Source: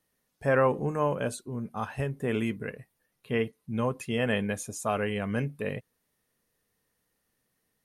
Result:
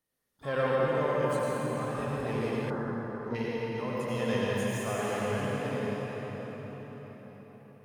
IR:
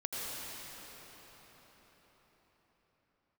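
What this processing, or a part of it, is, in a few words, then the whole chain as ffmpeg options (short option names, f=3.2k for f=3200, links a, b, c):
shimmer-style reverb: -filter_complex "[0:a]asplit=2[a][b];[b]asetrate=88200,aresample=44100,atempo=0.5,volume=-12dB[c];[a][c]amix=inputs=2:normalize=0[d];[1:a]atrim=start_sample=2205[e];[d][e]afir=irnorm=-1:irlink=0,asettb=1/sr,asplit=3[f][g][h];[f]atrim=end=2.704[i];[g]atrim=start=2.7:end=3.35,asetpts=PTS-STARTPTS,afade=t=in:d=0.004:c=qsin,afade=t=out:st=0.646:d=0.004:c=qsin,highshelf=f=1.9k:t=q:w=3:g=-10[j];[h]atrim=start=3.346[k];[i][j]acrossfade=d=0.004:c1=hsin:c2=qsin[l];[l][k]acrossfade=d=0.004:c1=qsin:c2=hsin,volume=-6dB"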